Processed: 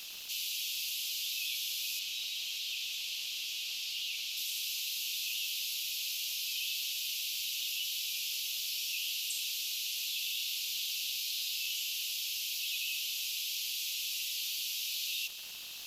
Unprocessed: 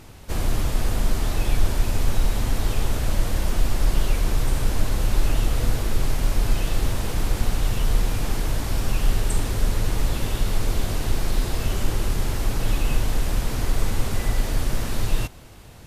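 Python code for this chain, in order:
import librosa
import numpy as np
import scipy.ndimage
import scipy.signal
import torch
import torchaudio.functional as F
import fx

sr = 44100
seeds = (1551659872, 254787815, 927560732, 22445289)

y = scipy.signal.sosfilt(scipy.signal.butter(12, 2600.0, 'highpass', fs=sr, output='sos'), x)
y = fx.peak_eq(y, sr, hz=8900.0, db=-14.0, octaves=0.5)
y = y + 0.37 * np.pad(y, (int(6.8 * sr / 1000.0), 0))[:len(y)]
y = fx.dmg_crackle(y, sr, seeds[0], per_s=360.0, level_db=-53.0)
y = fx.high_shelf(y, sr, hz=6500.0, db=-10.5, at=(1.99, 4.37))
y = fx.env_flatten(y, sr, amount_pct=50)
y = F.gain(torch.from_numpy(y), 2.5).numpy()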